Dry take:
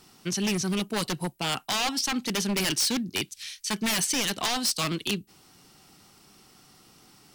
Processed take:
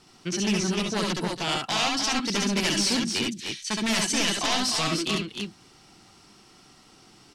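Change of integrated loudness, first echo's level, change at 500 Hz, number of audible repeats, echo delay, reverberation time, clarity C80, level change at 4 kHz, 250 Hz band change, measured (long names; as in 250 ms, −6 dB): +2.0 dB, −2.5 dB, +3.0 dB, 2, 67 ms, no reverb audible, no reverb audible, +2.5 dB, +2.5 dB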